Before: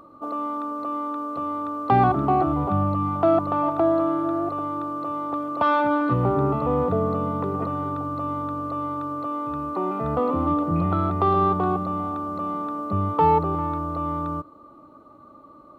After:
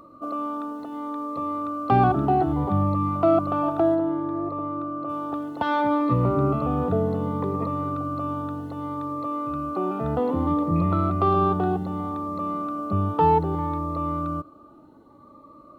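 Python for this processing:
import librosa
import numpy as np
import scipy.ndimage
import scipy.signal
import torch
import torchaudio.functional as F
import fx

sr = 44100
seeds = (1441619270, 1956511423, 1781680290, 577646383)

y = fx.lowpass(x, sr, hz=1400.0, slope=6, at=(3.94, 5.08), fade=0.02)
y = fx.notch_cascade(y, sr, direction='rising', hz=0.64)
y = y * 10.0 ** (1.0 / 20.0)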